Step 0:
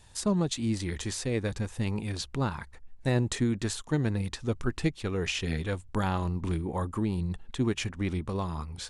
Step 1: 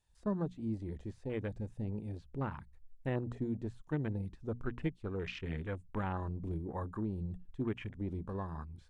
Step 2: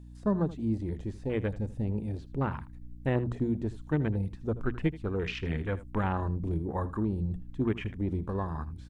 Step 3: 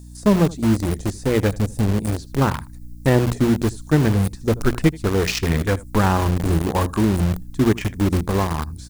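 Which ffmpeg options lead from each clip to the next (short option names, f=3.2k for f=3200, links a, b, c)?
-filter_complex "[0:a]bandreject=f=60:t=h:w=6,bandreject=f=120:t=h:w=6,bandreject=f=180:t=h:w=6,bandreject=f=240:t=h:w=6,acrossover=split=2800[a][b];[b]acompressor=threshold=-47dB:ratio=4:attack=1:release=60[c];[a][c]amix=inputs=2:normalize=0,afwtdn=0.0112,volume=-7.5dB"
-af "aecho=1:1:80:0.141,aeval=exprs='val(0)+0.00224*(sin(2*PI*60*n/s)+sin(2*PI*2*60*n/s)/2+sin(2*PI*3*60*n/s)/3+sin(2*PI*4*60*n/s)/4+sin(2*PI*5*60*n/s)/5)':c=same,volume=7dB"
-filter_complex "[0:a]aexciter=amount=7.9:drive=2.7:freq=4.3k,asplit=2[a][b];[b]acrusher=bits=4:mix=0:aa=0.000001,volume=-5dB[c];[a][c]amix=inputs=2:normalize=0,volume=8dB"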